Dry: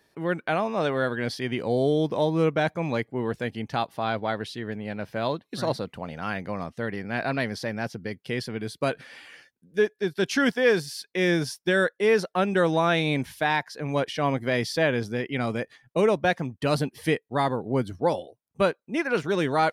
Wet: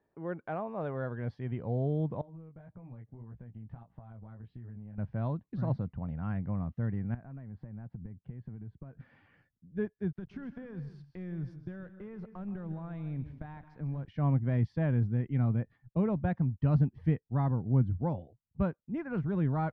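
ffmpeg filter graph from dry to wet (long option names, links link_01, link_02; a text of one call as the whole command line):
ffmpeg -i in.wav -filter_complex "[0:a]asettb=1/sr,asplit=3[link_01][link_02][link_03];[link_01]atrim=end=2.214[link_04];[link_02]atrim=start=2.21:end=4.98,asetpts=PTS-STARTPTS,afade=type=in:duration=0.004:curve=qsin,afade=type=out:start_time=2.766:duration=0.004:curve=qsin,lowpass=3100,flanger=delay=16:depth=3:speed=1.7,acompressor=threshold=-40dB:ratio=12:attack=3.2:release=140:knee=1:detection=peak[link_05];[link_03]atrim=start=4.976[link_06];[link_04][link_05]acrossfade=duration=0.004:curve1=hsin:curve2=qsin[link_07];[link_07][link_06]acrossfade=duration=0.004:curve1=qsin:curve2=hsin,asettb=1/sr,asplit=3[link_08][link_09][link_10];[link_08]atrim=end=7.144[link_11];[link_09]atrim=start=7.14:end=9,asetpts=PTS-STARTPTS,afade=type=in:duration=0.004:curve=qsin,afade=type=out:start_time=1.856:duration=0.004:curve=qsin,lowpass=1900,acompressor=threshold=-38dB:ratio=16:attack=3.2:release=140:knee=1:detection=peak[link_12];[link_10]atrim=start=8.996[link_13];[link_11][link_12]acrossfade=duration=0.004:curve1=hsin:curve2=qsin[link_14];[link_14][link_13]acrossfade=duration=0.004:curve1=qsin:curve2=hsin,asettb=1/sr,asplit=3[link_15][link_16][link_17];[link_15]atrim=end=10.114[link_18];[link_16]atrim=start=10.11:end=14.05,asetpts=PTS-STARTPTS,afade=type=in:duration=0.004:curve=qsin,afade=type=out:start_time=3.936:duration=0.004:curve=qsin,acompressor=threshold=-30dB:ratio=10:attack=3.2:release=140:knee=1:detection=peak,aeval=exprs='sgn(val(0))*max(abs(val(0))-0.00282,0)':channel_layout=same,aecho=1:1:129|156|219:0.133|0.211|0.126,atrim=end_sample=173754[link_19];[link_17]atrim=start=14.046[link_20];[link_18][link_19]acrossfade=duration=0.004:curve1=hsin:curve2=qsin[link_21];[link_21][link_20]acrossfade=duration=0.004:curve1=qsin:curve2=hsin,lowpass=1100,asubboost=boost=11.5:cutoff=130,volume=-9dB" out.wav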